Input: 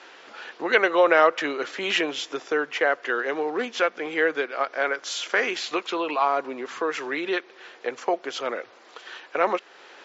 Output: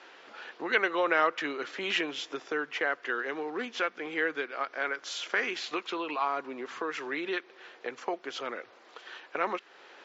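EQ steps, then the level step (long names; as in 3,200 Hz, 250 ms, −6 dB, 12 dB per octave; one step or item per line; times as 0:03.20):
dynamic equaliser 590 Hz, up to −7 dB, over −35 dBFS, Q 1.3
high-frequency loss of the air 54 metres
−4.5 dB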